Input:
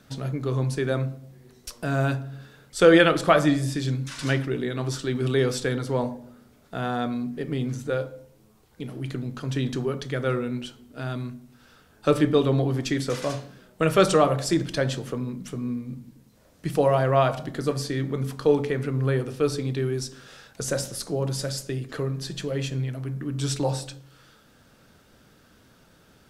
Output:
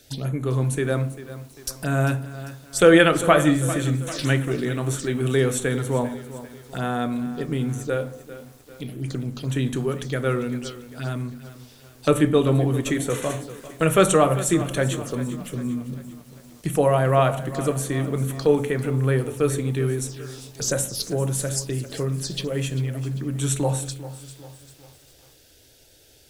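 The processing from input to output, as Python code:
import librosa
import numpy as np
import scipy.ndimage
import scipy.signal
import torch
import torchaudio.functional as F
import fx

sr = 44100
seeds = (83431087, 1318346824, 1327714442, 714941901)

y = fx.low_shelf(x, sr, hz=340.0, db=3.5)
y = fx.env_phaser(y, sr, low_hz=170.0, high_hz=4900.0, full_db=-24.0)
y = fx.high_shelf(y, sr, hz=2500.0, db=11.5)
y = fx.echo_crushed(y, sr, ms=396, feedback_pct=55, bits=7, wet_db=-14.5)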